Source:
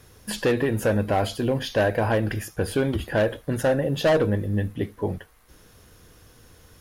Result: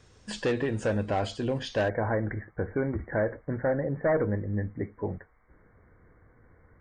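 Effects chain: brick-wall FIR low-pass 9.1 kHz, from 1.88 s 2.3 kHz; trim -5.5 dB

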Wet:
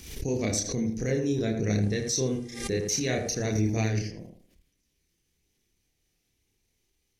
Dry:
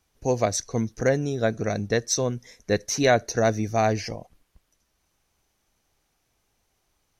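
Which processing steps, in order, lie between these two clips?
high-order bell 930 Hz -13 dB; level held to a coarse grid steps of 16 dB; chorus voices 2, 0.54 Hz, delay 30 ms, depth 1.8 ms; 1.81–3.44 s: mains buzz 400 Hz, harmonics 28, -69 dBFS -1 dB/octave; on a send: tape echo 79 ms, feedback 37%, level -3.5 dB, low-pass 1.3 kHz; on the sum: swell ahead of each attack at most 73 dB/s; trim +7.5 dB

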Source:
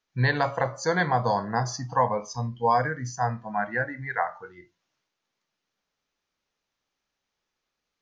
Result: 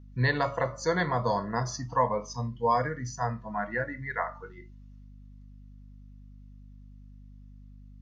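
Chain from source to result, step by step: comb of notches 790 Hz; hum 50 Hz, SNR 17 dB; trim -1.5 dB

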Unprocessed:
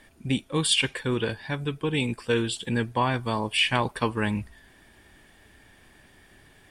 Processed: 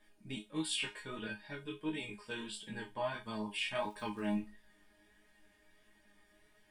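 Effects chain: 3.78–4.38 s: crackle 100 per s -34 dBFS; chord resonator G#3 fifth, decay 0.22 s; chorus 1.5 Hz, delay 18 ms, depth 4.8 ms; trim +4.5 dB

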